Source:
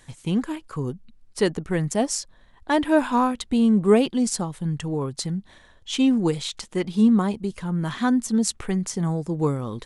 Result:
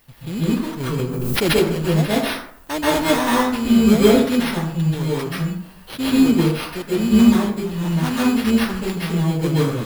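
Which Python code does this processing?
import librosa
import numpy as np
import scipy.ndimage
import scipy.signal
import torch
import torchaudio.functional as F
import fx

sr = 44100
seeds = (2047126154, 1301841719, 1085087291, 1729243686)

y = fx.bit_reversed(x, sr, seeds[0], block=16)
y = fx.sample_hold(y, sr, seeds[1], rate_hz=7300.0, jitter_pct=0)
y = fx.dmg_noise_colour(y, sr, seeds[2], colour='violet', level_db=-56.0)
y = fx.rev_plate(y, sr, seeds[3], rt60_s=0.61, hf_ratio=0.55, predelay_ms=120, drr_db=-8.0)
y = fx.pre_swell(y, sr, db_per_s=23.0, at=(0.8, 1.88))
y = F.gain(torch.from_numpy(y), -5.0).numpy()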